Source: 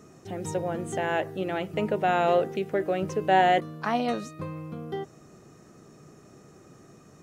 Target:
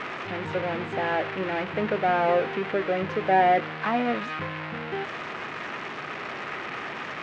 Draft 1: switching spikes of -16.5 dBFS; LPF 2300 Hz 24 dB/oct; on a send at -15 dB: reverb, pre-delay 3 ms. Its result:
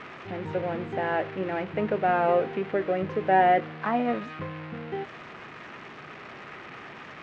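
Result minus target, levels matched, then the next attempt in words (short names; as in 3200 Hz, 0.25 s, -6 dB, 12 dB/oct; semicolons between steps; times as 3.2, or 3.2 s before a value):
switching spikes: distortion -9 dB
switching spikes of -7.5 dBFS; LPF 2300 Hz 24 dB/oct; on a send at -15 dB: reverb, pre-delay 3 ms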